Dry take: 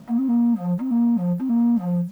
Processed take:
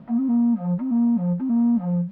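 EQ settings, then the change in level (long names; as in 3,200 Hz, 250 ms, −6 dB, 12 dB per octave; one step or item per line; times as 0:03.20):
high-frequency loss of the air 420 metres
0.0 dB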